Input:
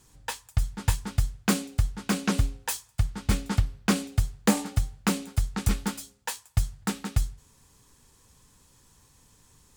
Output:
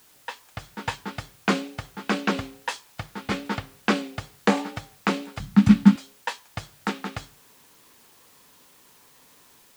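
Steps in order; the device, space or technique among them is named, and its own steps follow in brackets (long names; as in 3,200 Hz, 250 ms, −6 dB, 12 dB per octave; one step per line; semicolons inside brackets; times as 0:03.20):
dictaphone (band-pass filter 280–3,400 Hz; automatic gain control gain up to 7 dB; tape wow and flutter; white noise bed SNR 25 dB)
0:05.40–0:05.96: low shelf with overshoot 300 Hz +12 dB, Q 3
level −1 dB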